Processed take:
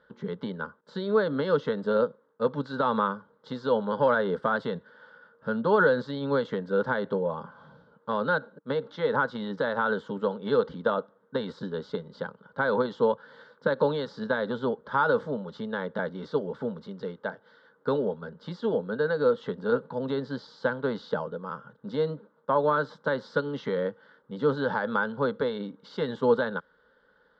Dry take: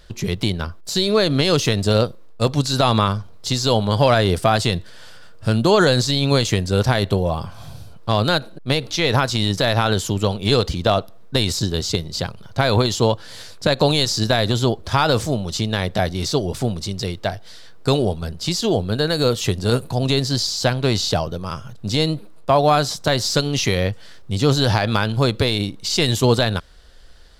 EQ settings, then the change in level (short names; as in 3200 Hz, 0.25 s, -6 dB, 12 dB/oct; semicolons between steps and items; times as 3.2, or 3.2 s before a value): air absorption 490 m; speaker cabinet 170–7000 Hz, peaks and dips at 300 Hz +7 dB, 480 Hz +6 dB, 840 Hz +10 dB, 1500 Hz +10 dB, 2300 Hz +8 dB, 3400 Hz +6 dB; fixed phaser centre 490 Hz, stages 8; -7.5 dB